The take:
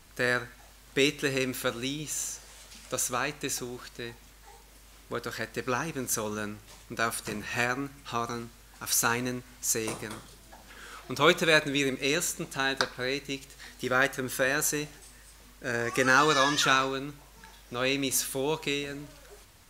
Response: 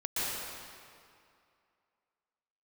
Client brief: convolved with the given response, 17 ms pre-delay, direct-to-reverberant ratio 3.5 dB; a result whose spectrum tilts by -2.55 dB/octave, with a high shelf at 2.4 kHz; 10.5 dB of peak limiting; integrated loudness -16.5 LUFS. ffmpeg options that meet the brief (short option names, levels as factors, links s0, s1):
-filter_complex "[0:a]highshelf=f=2400:g=8,alimiter=limit=0.224:level=0:latency=1,asplit=2[s0][s1];[1:a]atrim=start_sample=2205,adelay=17[s2];[s1][s2]afir=irnorm=-1:irlink=0,volume=0.282[s3];[s0][s3]amix=inputs=2:normalize=0,volume=3.16"